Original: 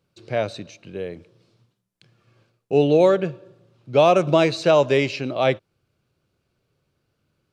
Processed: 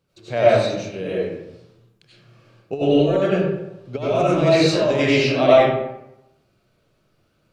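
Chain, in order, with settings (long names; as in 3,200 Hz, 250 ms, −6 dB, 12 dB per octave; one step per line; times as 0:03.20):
compressor whose output falls as the input rises −19 dBFS, ratio −0.5
comb and all-pass reverb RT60 0.88 s, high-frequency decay 0.6×, pre-delay 55 ms, DRR −9 dB
level −4.5 dB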